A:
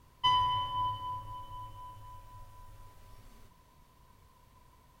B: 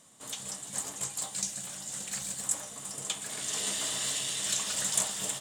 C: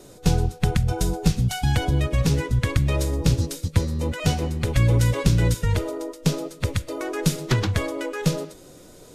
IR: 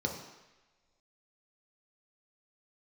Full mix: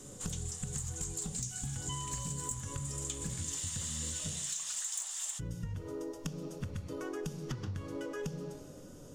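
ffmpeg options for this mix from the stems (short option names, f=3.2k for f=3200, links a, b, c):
-filter_complex "[0:a]highpass=1k,adelay=1650,volume=-3.5dB[a];[1:a]highpass=f=830:w=0.5412,highpass=f=830:w=1.3066,equalizer=f=6.8k:w=2:g=9.5,asoftclip=type=tanh:threshold=-13.5dB,volume=0dB[b];[2:a]acompressor=threshold=-24dB:ratio=6,volume=-7.5dB,asplit=3[c][d][e];[c]atrim=end=4.34,asetpts=PTS-STARTPTS,afade=t=out:st=4.336:d=0.004:c=hsin[f];[d]atrim=start=4.34:end=5.39,asetpts=PTS-STARTPTS,volume=0[g];[e]atrim=start=5.39,asetpts=PTS-STARTPTS,afade=t=in:d=0.004:c=hsin[h];[f][g][h]concat=n=3:v=0:a=1,asplit=2[i][j];[j]volume=-6.5dB[k];[3:a]atrim=start_sample=2205[l];[k][l]afir=irnorm=-1:irlink=0[m];[a][b][i][m]amix=inputs=4:normalize=0,acompressor=threshold=-36dB:ratio=6"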